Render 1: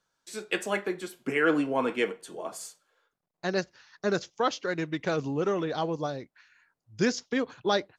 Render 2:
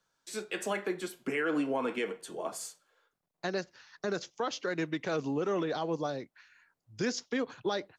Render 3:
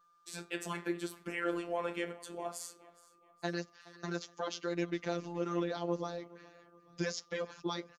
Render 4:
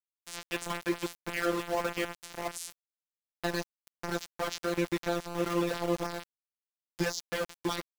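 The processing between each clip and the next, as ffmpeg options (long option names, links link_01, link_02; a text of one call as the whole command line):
ffmpeg -i in.wav -filter_complex "[0:a]acrossover=split=150|1100[link_01][link_02][link_03];[link_01]acompressor=threshold=-55dB:ratio=6[link_04];[link_04][link_02][link_03]amix=inputs=3:normalize=0,alimiter=limit=-22.5dB:level=0:latency=1:release=104" out.wav
ffmpeg -i in.wav -af "aecho=1:1:420|840|1260:0.0891|0.0357|0.0143,afftfilt=real='hypot(re,im)*cos(PI*b)':imag='0':win_size=1024:overlap=0.75,aeval=exprs='val(0)+0.000501*sin(2*PI*1200*n/s)':channel_layout=same" out.wav
ffmpeg -i in.wav -af "aeval=exprs='val(0)*gte(abs(val(0)),0.0141)':channel_layout=same,volume=5dB" out.wav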